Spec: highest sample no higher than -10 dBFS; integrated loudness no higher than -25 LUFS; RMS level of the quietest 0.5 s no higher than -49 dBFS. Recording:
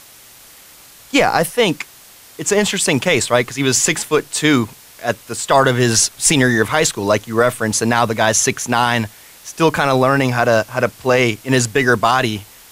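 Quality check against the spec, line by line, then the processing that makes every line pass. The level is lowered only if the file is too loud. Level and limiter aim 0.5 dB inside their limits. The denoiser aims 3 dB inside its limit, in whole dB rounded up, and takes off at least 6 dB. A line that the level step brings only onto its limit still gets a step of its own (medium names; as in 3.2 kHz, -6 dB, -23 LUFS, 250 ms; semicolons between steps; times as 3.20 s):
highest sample -1.5 dBFS: fail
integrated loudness -15.5 LUFS: fail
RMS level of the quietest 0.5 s -43 dBFS: fail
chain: trim -10 dB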